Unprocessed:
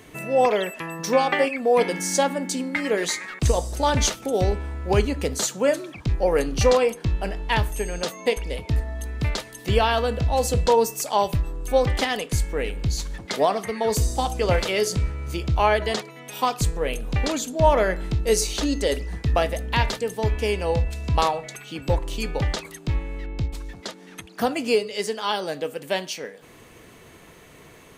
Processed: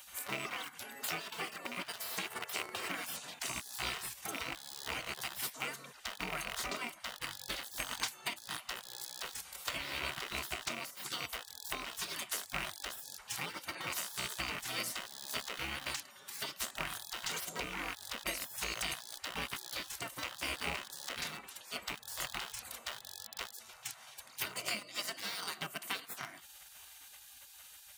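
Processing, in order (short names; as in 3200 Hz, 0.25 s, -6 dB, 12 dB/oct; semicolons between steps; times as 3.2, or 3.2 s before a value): rattling part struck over -29 dBFS, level -16 dBFS; high shelf 8000 Hz +12 dB; in parallel at -10 dB: bit-crush 4-bit; on the sum: high shelf 2000 Hz -8.5 dB; notch comb 850 Hz; compressor 12:1, threshold -29 dBFS, peak gain reduction 17.5 dB; HPF 240 Hz 6 dB/oct; spectral gate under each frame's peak -20 dB weak; gain +7 dB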